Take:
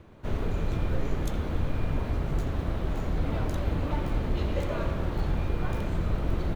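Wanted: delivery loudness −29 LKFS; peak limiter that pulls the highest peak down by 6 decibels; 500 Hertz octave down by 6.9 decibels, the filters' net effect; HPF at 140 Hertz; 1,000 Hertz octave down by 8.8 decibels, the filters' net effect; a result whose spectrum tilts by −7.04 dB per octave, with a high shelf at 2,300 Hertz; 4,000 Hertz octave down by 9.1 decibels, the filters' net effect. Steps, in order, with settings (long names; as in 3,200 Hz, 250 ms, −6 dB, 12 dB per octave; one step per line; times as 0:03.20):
high-pass filter 140 Hz
parametric band 500 Hz −6.5 dB
parametric band 1,000 Hz −8 dB
high-shelf EQ 2,300 Hz −5.5 dB
parametric band 4,000 Hz −6.5 dB
level +10 dB
brickwall limiter −19 dBFS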